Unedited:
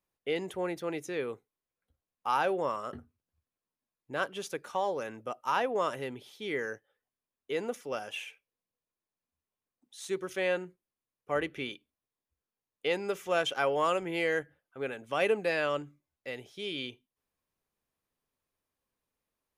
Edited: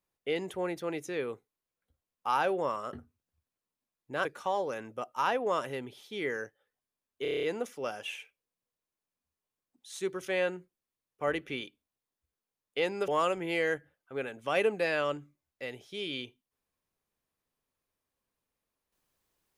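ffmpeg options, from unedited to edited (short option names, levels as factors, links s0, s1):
-filter_complex "[0:a]asplit=10[s0][s1][s2][s3][s4][s5][s6][s7][s8][s9];[s0]atrim=end=4.252[s10];[s1]atrim=start=4.538:end=7.542[s11];[s2]atrim=start=7.508:end=7.542[s12];[s3]atrim=start=7.508:end=7.542[s13];[s4]atrim=start=7.508:end=7.542[s14];[s5]atrim=start=7.508:end=7.542[s15];[s6]atrim=start=7.508:end=7.542[s16];[s7]atrim=start=7.508:end=7.542[s17];[s8]atrim=start=7.508:end=13.162[s18];[s9]atrim=start=13.728[s19];[s10][s11]acrossfade=d=0.004:c1=hsin:c2=hsin[s20];[s20][s12]acrossfade=d=0.004:c1=hsin:c2=hsin[s21];[s21][s13]acrossfade=d=0.004:c1=hsin:c2=hsin[s22];[s22][s14]acrossfade=d=0.004:c1=hsin:c2=hsin[s23];[s23][s15]acrossfade=d=0.004:c1=hsin:c2=hsin[s24];[s24][s16]acrossfade=d=0.004:c1=hsin:c2=hsin[s25];[s25][s17]acrossfade=d=0.004:c1=hsin:c2=hsin[s26];[s26][s18]acrossfade=d=0.004:c1=hsin:c2=hsin[s27];[s27][s19]acrossfade=d=0.004:c1=hsin:c2=hsin"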